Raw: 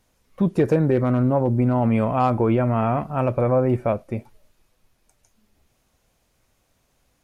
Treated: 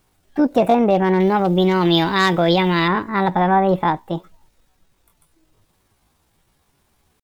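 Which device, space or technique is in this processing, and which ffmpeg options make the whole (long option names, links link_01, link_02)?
chipmunk voice: -filter_complex "[0:a]asetrate=66075,aresample=44100,atempo=0.66742,asettb=1/sr,asplit=3[link_01][link_02][link_03];[link_01]atrim=end=1.204[link_04];[link_02]atrim=start=1.2:end=2.88,asetpts=PTS-STARTPTS,afade=type=in:duration=0.004:curve=qsin,afade=type=out:start_time=1.676:duration=0.004:curve=qsin,highshelf=frequency=2100:width_type=q:width=1.5:gain=10.5[link_05];[link_03]atrim=start=2.876[link_06];[link_04][link_05]acrossfade=duration=0.004:curve1=hsin:curve2=qsin[link_07];[link_07][link_06]acrossfade=duration=0.004:curve1=qsin:curve2=hsin,volume=3.5dB"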